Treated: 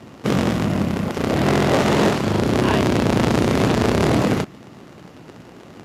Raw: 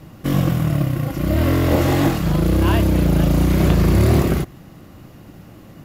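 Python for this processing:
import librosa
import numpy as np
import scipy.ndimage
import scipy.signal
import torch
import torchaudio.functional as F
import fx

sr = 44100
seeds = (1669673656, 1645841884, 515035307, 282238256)

y = fx.cycle_switch(x, sr, every=3, mode='inverted')
y = np.clip(y, -10.0 ** (-12.0 / 20.0), 10.0 ** (-12.0 / 20.0))
y = fx.bandpass_edges(y, sr, low_hz=140.0, high_hz=7700.0)
y = F.gain(torch.from_numpy(y), 2.0).numpy()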